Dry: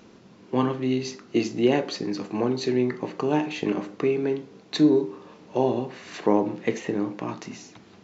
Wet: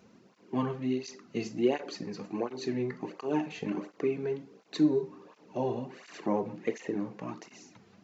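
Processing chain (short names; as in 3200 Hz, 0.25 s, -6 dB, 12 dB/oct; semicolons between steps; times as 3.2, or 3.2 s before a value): bell 3500 Hz -4 dB 0.49 oct; tape flanging out of phase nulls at 1.4 Hz, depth 3.7 ms; gain -5 dB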